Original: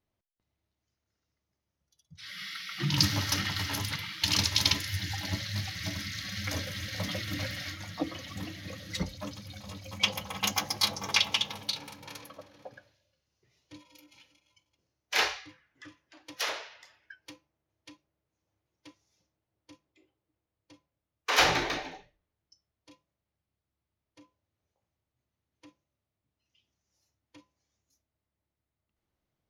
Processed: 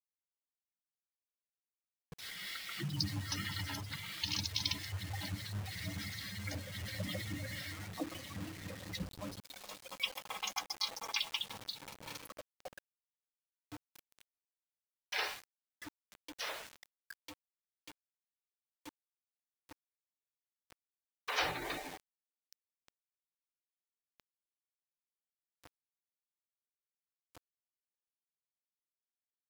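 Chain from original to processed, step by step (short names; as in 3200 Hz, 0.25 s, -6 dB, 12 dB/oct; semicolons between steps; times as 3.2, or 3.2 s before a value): 9.4–11.4 HPF 420 Hz 12 dB/oct; spectral gate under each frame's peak -15 dB strong; compressor 1.5:1, threshold -50 dBFS, peak gain reduction 11.5 dB; bit-crush 8-bit; noise-modulated level, depth 55%; gain +2.5 dB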